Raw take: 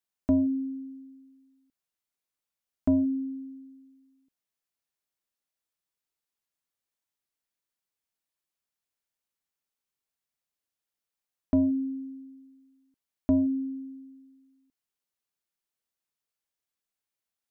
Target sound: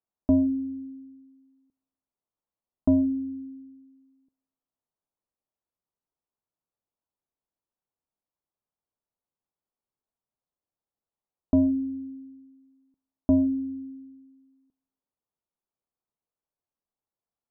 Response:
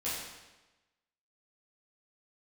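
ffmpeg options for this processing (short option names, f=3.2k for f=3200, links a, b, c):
-filter_complex "[0:a]lowpass=f=1.1k:w=0.5412,lowpass=f=1.1k:w=1.3066,asplit=2[a][b];[1:a]atrim=start_sample=2205,lowshelf=f=110:g=10.5[c];[b][c]afir=irnorm=-1:irlink=0,volume=-26.5dB[d];[a][d]amix=inputs=2:normalize=0,volume=2.5dB"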